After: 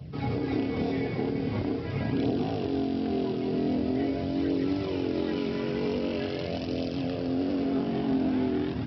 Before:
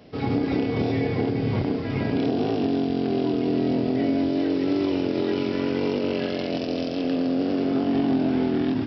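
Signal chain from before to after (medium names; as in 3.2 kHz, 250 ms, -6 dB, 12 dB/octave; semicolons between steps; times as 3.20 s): band noise 71–180 Hz -37 dBFS; flange 0.44 Hz, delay 0.2 ms, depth 5.3 ms, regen -44%; trim -1 dB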